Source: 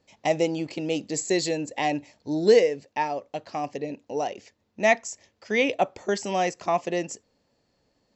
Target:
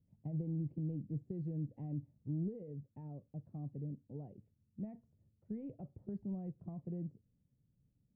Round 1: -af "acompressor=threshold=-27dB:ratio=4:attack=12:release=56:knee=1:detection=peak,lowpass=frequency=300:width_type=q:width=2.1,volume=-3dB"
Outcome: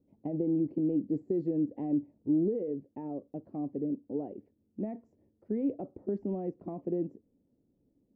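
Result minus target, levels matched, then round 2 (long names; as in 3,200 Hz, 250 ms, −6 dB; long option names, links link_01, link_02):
125 Hz band −11.5 dB
-af "acompressor=threshold=-27dB:ratio=4:attack=12:release=56:knee=1:detection=peak,lowpass=frequency=140:width_type=q:width=2.1,volume=-3dB"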